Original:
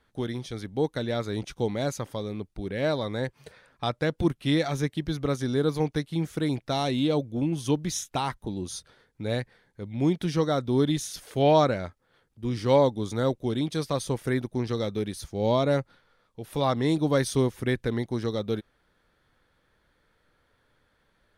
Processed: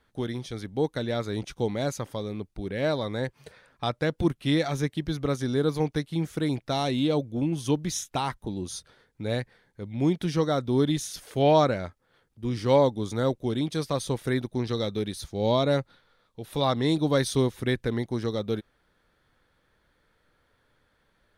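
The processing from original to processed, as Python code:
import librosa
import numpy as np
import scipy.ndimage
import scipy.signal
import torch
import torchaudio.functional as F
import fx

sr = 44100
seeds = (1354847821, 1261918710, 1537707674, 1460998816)

y = fx.peak_eq(x, sr, hz=3800.0, db=6.0, octaves=0.3, at=(14.03, 17.75))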